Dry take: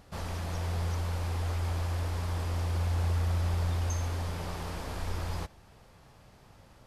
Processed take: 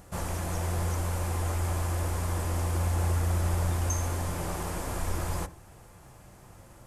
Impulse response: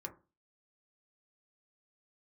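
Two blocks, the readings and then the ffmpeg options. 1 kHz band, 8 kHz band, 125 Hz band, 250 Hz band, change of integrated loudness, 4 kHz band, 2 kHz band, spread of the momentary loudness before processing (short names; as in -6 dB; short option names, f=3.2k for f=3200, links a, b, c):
+4.5 dB, +9.0 dB, +1.5 dB, +5.0 dB, +2.5 dB, 0.0 dB, +3.0 dB, 8 LU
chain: -filter_complex "[0:a]highshelf=f=5.7k:t=q:w=1.5:g=10,asplit=2[a][b];[1:a]atrim=start_sample=2205,lowpass=4k[c];[b][c]afir=irnorm=-1:irlink=0,volume=0.5dB[d];[a][d]amix=inputs=2:normalize=0"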